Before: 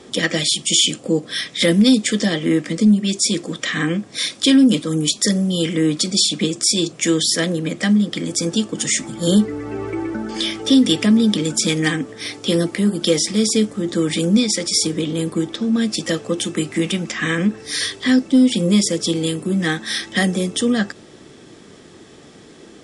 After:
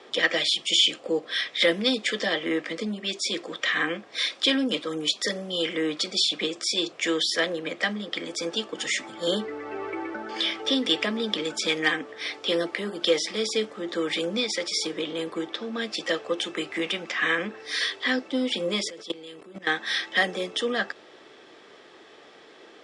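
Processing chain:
0:18.90–0:19.67: output level in coarse steps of 17 dB
three-way crossover with the lows and the highs turned down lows −23 dB, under 410 Hz, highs −20 dB, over 4,500 Hz
level −1 dB

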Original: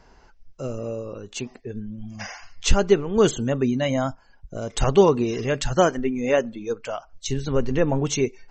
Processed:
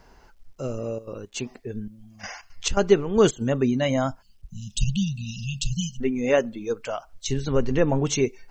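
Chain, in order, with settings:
0:00.84–0:03.40: gate pattern "xxxxx....xx.xx.x" 168 BPM −12 dB
0:04.22–0:06.01: time-frequency box erased 230–2,500 Hz
bit-depth reduction 12 bits, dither none

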